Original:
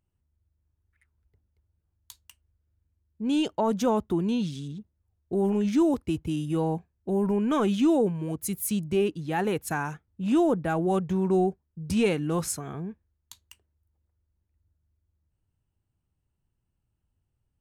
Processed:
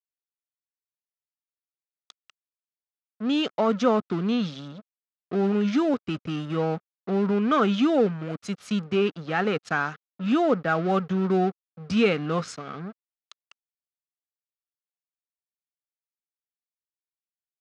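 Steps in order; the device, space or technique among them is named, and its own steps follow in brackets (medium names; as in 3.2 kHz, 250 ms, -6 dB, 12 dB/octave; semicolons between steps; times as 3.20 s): blown loudspeaker (crossover distortion -42 dBFS; cabinet simulation 180–5200 Hz, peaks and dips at 340 Hz -8 dB, 920 Hz -8 dB, 1.3 kHz +9 dB); trim +5.5 dB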